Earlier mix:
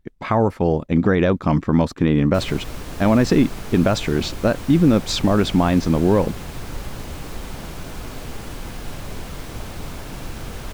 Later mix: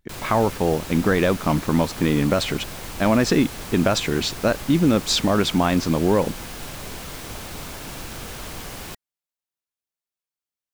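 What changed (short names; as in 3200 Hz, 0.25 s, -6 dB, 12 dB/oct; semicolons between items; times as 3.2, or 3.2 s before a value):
background: entry -2.25 s; master: add tilt +1.5 dB/oct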